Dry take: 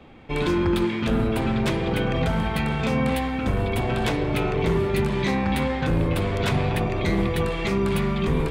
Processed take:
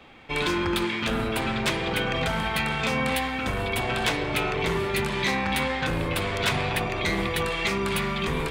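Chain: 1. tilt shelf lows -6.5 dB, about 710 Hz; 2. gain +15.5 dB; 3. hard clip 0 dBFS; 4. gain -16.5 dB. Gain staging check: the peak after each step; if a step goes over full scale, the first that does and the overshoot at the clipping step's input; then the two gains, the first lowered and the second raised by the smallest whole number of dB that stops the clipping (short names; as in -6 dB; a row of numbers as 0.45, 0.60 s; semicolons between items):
-10.0, +5.5, 0.0, -16.5 dBFS; step 2, 5.5 dB; step 2 +9.5 dB, step 4 -10.5 dB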